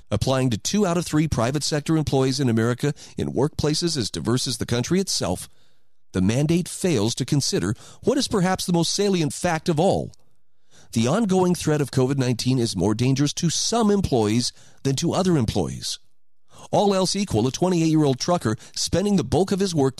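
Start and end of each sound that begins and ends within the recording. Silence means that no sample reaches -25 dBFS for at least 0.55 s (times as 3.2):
6.15–10.06
10.94–15.95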